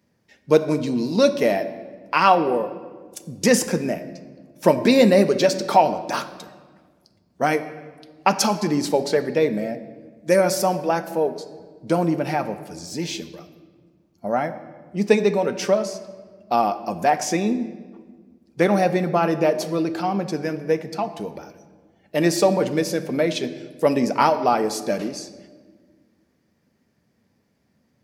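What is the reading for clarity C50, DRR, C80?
13.0 dB, 8.5 dB, 14.0 dB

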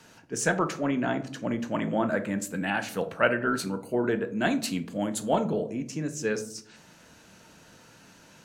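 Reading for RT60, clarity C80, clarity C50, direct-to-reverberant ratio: 0.60 s, 18.5 dB, 14.5 dB, 8.0 dB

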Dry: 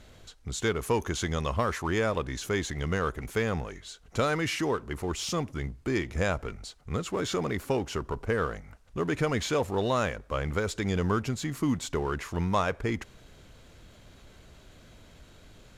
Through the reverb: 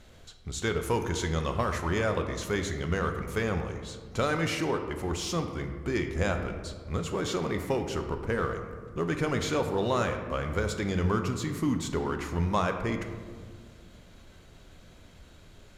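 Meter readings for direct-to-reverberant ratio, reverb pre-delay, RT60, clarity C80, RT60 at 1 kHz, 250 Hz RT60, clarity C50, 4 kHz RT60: 5.5 dB, 5 ms, 1.9 s, 9.0 dB, 1.7 s, 2.4 s, 7.5 dB, 0.85 s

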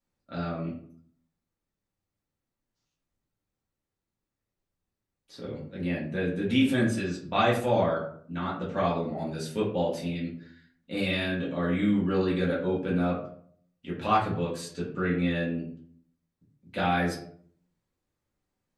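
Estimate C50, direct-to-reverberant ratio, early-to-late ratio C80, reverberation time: 5.5 dB, -6.5 dB, 9.5 dB, 0.60 s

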